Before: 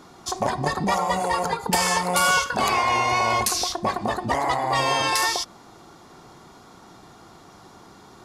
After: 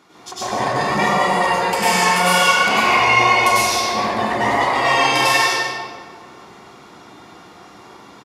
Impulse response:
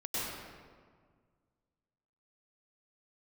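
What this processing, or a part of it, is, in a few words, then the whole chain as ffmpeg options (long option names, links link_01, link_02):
PA in a hall: -filter_complex "[0:a]highpass=frequency=180:poles=1,equalizer=frequency=2400:width_type=o:width=1:gain=8,aecho=1:1:144:0.376[link_01];[1:a]atrim=start_sample=2205[link_02];[link_01][link_02]afir=irnorm=-1:irlink=0,volume=-1dB"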